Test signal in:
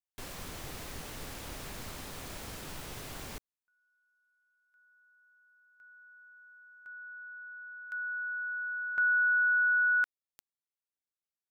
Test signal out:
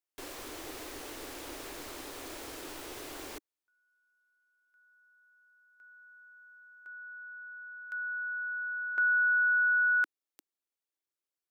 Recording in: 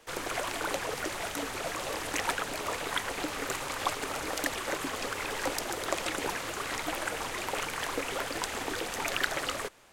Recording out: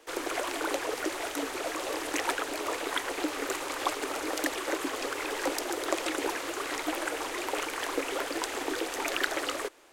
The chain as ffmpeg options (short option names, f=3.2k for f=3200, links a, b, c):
-af "lowshelf=f=240:t=q:w=3:g=-9"